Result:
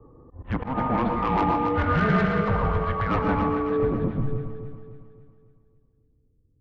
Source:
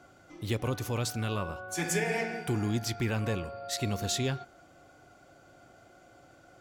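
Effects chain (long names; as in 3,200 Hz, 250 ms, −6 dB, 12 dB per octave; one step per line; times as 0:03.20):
low-pass that shuts in the quiet parts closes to 320 Hz, open at −27.5 dBFS
0:01.39–0:01.95: low-shelf EQ 410 Hz +8.5 dB
low-pass filter sweep 1,300 Hz → 130 Hz, 0:03.61–0:04.56
in parallel at +3 dB: downward compressor 6 to 1, threshold −36 dBFS, peak gain reduction 13 dB
on the sum: single-sideband voice off tune −260 Hz 310–3,500 Hz
soft clipping −25.5 dBFS, distortion −13 dB
delay that swaps between a low-pass and a high-pass 138 ms, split 900 Hz, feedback 67%, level −4 dB
on a send at −7 dB: convolution reverb RT60 0.35 s, pre-delay 108 ms
on the sum: volume swells 121 ms
level +7.5 dB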